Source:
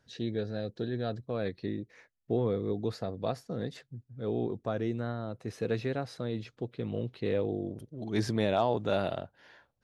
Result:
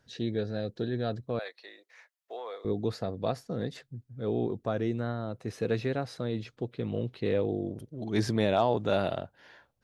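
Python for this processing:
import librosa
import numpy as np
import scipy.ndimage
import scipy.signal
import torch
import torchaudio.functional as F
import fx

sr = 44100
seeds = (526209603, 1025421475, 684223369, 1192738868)

y = fx.highpass(x, sr, hz=660.0, slope=24, at=(1.39, 2.65))
y = F.gain(torch.from_numpy(y), 2.0).numpy()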